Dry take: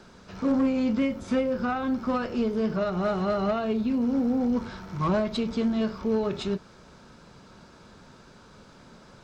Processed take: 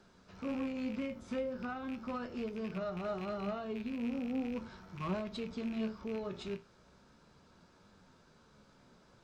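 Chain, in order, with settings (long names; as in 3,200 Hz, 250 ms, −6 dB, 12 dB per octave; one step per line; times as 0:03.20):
loose part that buzzes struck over −29 dBFS, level −26 dBFS
flanger 0.38 Hz, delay 9.9 ms, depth 7.9 ms, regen +62%
level −8 dB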